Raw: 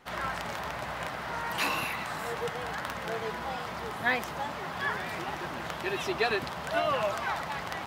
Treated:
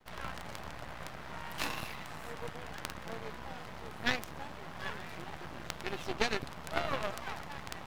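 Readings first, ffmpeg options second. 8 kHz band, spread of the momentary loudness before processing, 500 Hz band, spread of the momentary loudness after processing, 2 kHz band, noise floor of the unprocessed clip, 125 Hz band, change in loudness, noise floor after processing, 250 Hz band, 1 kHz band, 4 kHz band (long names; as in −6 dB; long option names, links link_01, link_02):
−4.0 dB, 7 LU, −8.5 dB, 11 LU, −7.5 dB, −38 dBFS, −4.0 dB, −7.5 dB, −46 dBFS, −4.5 dB, −9.0 dB, −4.5 dB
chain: -af "lowshelf=frequency=210:gain=10.5,aeval=exprs='max(val(0),0)':channel_layout=same,aeval=exprs='0.2*(cos(1*acos(clip(val(0)/0.2,-1,1)))-cos(1*PI/2))+0.0447*(cos(3*acos(clip(val(0)/0.2,-1,1)))-cos(3*PI/2))+0.00158*(cos(8*acos(clip(val(0)/0.2,-1,1)))-cos(8*PI/2))':channel_layout=same,volume=3dB"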